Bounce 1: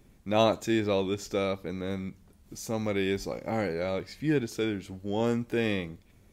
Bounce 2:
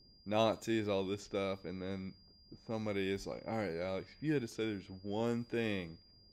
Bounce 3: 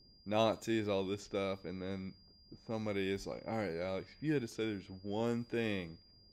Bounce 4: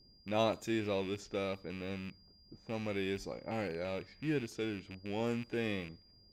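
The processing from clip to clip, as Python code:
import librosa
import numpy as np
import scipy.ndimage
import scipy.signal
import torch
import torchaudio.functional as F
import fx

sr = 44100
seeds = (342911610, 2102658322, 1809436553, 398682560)

y1 = fx.env_lowpass(x, sr, base_hz=590.0, full_db=-26.0)
y1 = y1 + 10.0 ** (-55.0 / 20.0) * np.sin(2.0 * np.pi * 4800.0 * np.arange(len(y1)) / sr)
y1 = F.gain(torch.from_numpy(y1), -8.0).numpy()
y2 = y1
y3 = fx.rattle_buzz(y2, sr, strikes_db=-43.0, level_db=-37.0)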